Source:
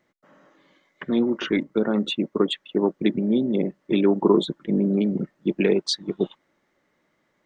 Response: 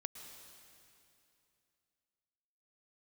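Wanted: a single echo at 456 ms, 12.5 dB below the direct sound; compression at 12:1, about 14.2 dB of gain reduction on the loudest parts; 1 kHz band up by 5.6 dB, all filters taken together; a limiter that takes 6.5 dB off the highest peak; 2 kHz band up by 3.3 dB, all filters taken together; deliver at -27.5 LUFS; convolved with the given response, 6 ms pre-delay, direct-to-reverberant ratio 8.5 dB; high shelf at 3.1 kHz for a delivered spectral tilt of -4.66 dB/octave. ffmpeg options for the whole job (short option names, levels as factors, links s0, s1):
-filter_complex "[0:a]equalizer=f=1000:t=o:g=6,equalizer=f=2000:t=o:g=5.5,highshelf=f=3100:g=-7.5,acompressor=threshold=0.0447:ratio=12,alimiter=limit=0.0708:level=0:latency=1,aecho=1:1:456:0.237,asplit=2[s0][s1];[1:a]atrim=start_sample=2205,adelay=6[s2];[s1][s2]afir=irnorm=-1:irlink=0,volume=0.501[s3];[s0][s3]amix=inputs=2:normalize=0,volume=2.11"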